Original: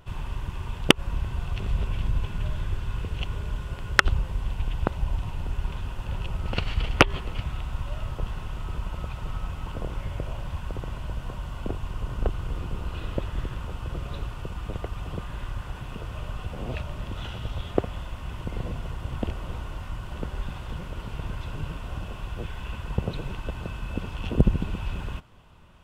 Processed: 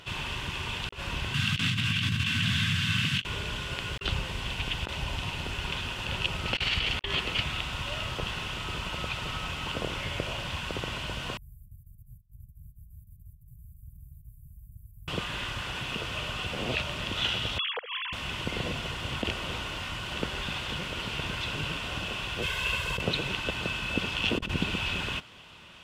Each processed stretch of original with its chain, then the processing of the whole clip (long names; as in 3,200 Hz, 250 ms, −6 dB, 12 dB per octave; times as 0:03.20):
0:01.34–0:03.24: drawn EQ curve 180 Hz 0 dB, 440 Hz −20 dB, 1,500 Hz +6 dB + frequency shifter +70 Hz
0:11.37–0:15.08: guitar amp tone stack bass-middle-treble 10-0-10 + compressor whose output falls as the input rises −38 dBFS, ratio −0.5 + inverse Chebyshev band-stop filter 530–5,500 Hz, stop band 60 dB
0:17.58–0:18.13: three sine waves on the formant tracks + downward compressor, threshold −37 dBFS
0:22.42–0:23.01: high-shelf EQ 8,600 Hz +9 dB + comb filter 1.9 ms, depth 55%
whole clip: meter weighting curve D; compressor whose output falls as the input rises −29 dBFS, ratio −0.5